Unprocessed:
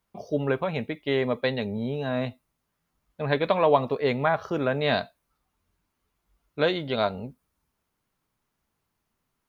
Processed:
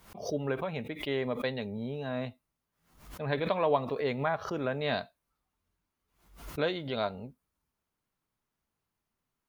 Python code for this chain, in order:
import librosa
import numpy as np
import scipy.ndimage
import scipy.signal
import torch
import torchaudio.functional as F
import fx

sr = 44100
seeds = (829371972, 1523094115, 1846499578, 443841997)

y = fx.pre_swell(x, sr, db_per_s=100.0)
y = F.gain(torch.from_numpy(y), -7.0).numpy()